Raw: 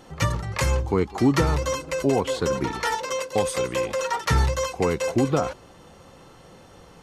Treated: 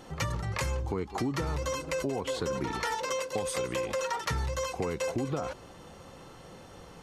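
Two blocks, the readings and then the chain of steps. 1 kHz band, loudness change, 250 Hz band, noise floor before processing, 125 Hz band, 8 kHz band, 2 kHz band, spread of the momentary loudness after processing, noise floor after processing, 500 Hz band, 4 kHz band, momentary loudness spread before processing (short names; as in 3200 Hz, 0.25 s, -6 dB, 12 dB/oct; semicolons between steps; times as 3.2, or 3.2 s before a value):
-7.5 dB, -8.5 dB, -10.5 dB, -49 dBFS, -9.0 dB, -6.0 dB, -6.5 dB, 18 LU, -50 dBFS, -8.0 dB, -6.0 dB, 5 LU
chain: in parallel at +2.5 dB: limiter -19.5 dBFS, peak gain reduction 10 dB; on the sum: compressor, threshold -20 dBFS, peak gain reduction 9 dB; gain -8 dB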